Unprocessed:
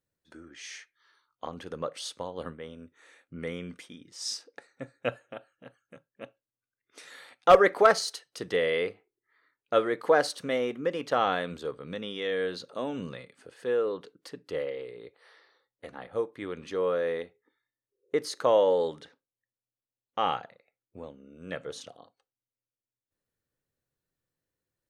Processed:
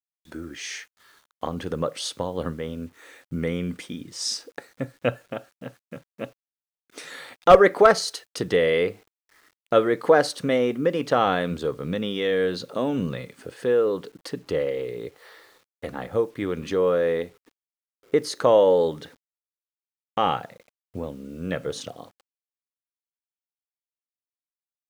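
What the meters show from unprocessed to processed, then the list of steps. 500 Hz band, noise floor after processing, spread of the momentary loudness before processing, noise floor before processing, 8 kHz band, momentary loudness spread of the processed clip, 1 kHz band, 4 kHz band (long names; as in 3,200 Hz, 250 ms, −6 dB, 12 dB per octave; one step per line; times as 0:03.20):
+6.0 dB, below −85 dBFS, 23 LU, below −85 dBFS, +5.5 dB, 21 LU, +4.0 dB, +5.0 dB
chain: low-shelf EQ 320 Hz +8.5 dB
in parallel at +1 dB: downward compressor 6 to 1, threshold −36 dBFS, peak gain reduction 24.5 dB
on the sum: bit reduction 10 bits
level +2 dB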